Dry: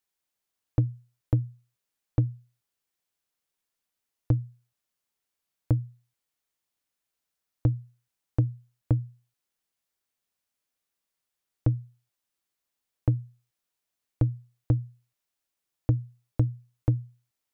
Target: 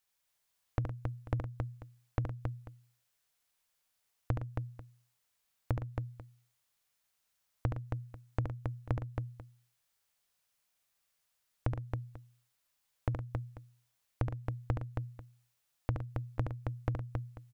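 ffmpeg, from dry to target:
-filter_complex "[0:a]equalizer=f=300:w=1.3:g=-9,acompressor=threshold=0.02:ratio=6,asplit=2[s0][s1];[s1]aecho=0:1:71|113|272|491:0.531|0.266|0.631|0.15[s2];[s0][s2]amix=inputs=2:normalize=0,volume=1.41"

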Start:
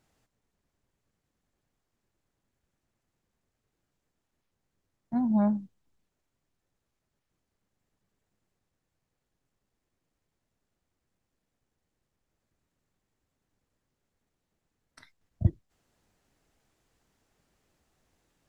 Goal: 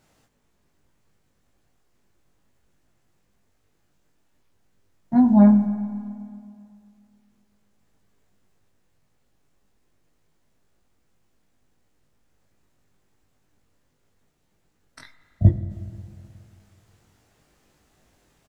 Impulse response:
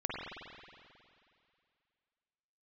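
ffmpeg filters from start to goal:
-filter_complex "[0:a]asplit=2[s0][s1];[s1]adelay=20,volume=0.708[s2];[s0][s2]amix=inputs=2:normalize=0,asplit=2[s3][s4];[1:a]atrim=start_sample=2205[s5];[s4][s5]afir=irnorm=-1:irlink=0,volume=0.237[s6];[s3][s6]amix=inputs=2:normalize=0,volume=2.11"

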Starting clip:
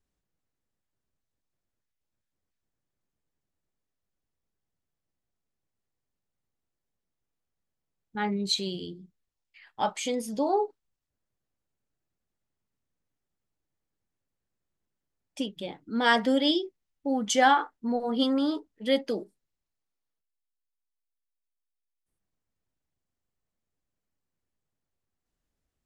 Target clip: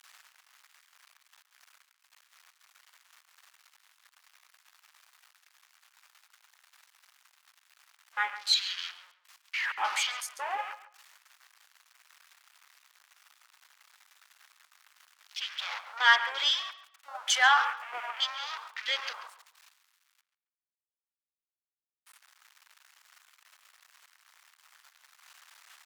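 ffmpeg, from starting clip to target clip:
-filter_complex "[0:a]aeval=exprs='val(0)+0.5*0.0447*sgn(val(0))':c=same,highpass=f=1100:w=0.5412,highpass=f=1100:w=1.3066,afwtdn=0.0112,aemphasis=mode=reproduction:type=cd,asplit=2[s0][s1];[s1]adelay=138,lowpass=f=3800:p=1,volume=0.224,asplit=2[s2][s3];[s3]adelay=138,lowpass=f=3800:p=1,volume=0.24,asplit=2[s4][s5];[s5]adelay=138,lowpass=f=3800:p=1,volume=0.24[s6];[s2][s4][s6]amix=inputs=3:normalize=0[s7];[s0][s7]amix=inputs=2:normalize=0,volume=1.5"

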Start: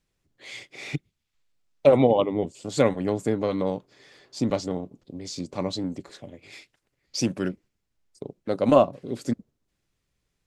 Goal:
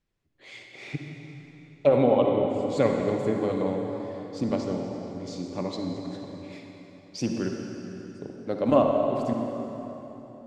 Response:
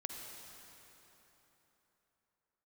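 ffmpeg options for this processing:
-filter_complex "[0:a]lowpass=f=3200:p=1[s0];[1:a]atrim=start_sample=2205[s1];[s0][s1]afir=irnorm=-1:irlink=0"

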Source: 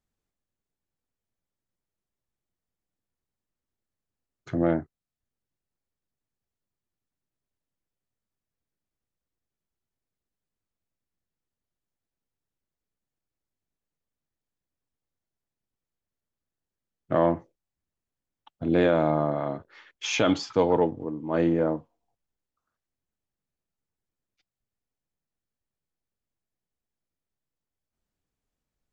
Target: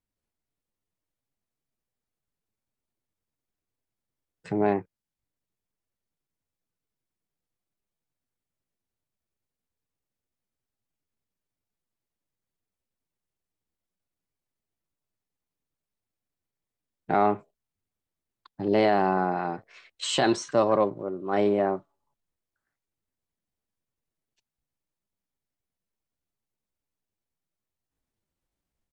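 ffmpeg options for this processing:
-af "asetrate=53981,aresample=44100,atempo=0.816958,dynaudnorm=f=140:g=3:m=1.68,volume=0.596"

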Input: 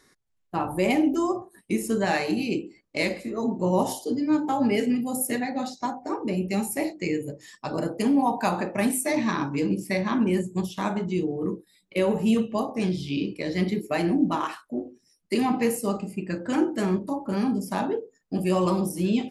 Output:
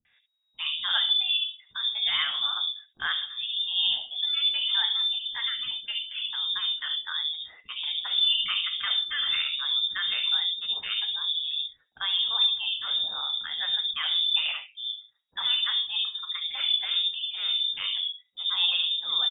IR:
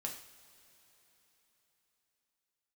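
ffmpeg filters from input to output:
-filter_complex "[0:a]lowpass=f=3200:t=q:w=0.5098,lowpass=f=3200:t=q:w=0.6013,lowpass=f=3200:t=q:w=0.9,lowpass=f=3200:t=q:w=2.563,afreqshift=-3800,acrossover=split=370|3000[s0][s1][s2];[s1]adelay=50[s3];[s2]adelay=120[s4];[s0][s3][s4]amix=inputs=3:normalize=0"

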